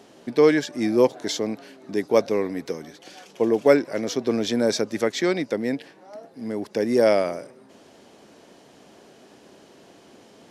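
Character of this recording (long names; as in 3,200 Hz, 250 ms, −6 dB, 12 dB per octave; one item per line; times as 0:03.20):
background noise floor −52 dBFS
spectral slope −4.0 dB per octave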